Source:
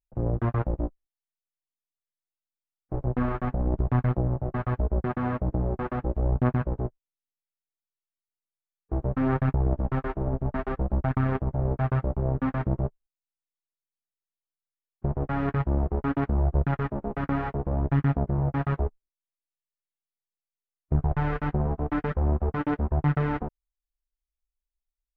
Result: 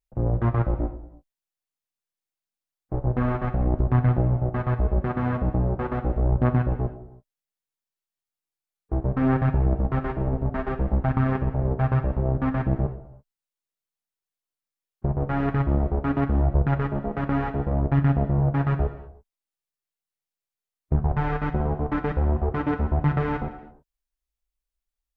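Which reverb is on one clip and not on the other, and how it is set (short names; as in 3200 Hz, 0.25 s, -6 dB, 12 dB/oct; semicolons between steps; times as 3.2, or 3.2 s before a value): non-linear reverb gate 0.36 s falling, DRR 8 dB; gain +2 dB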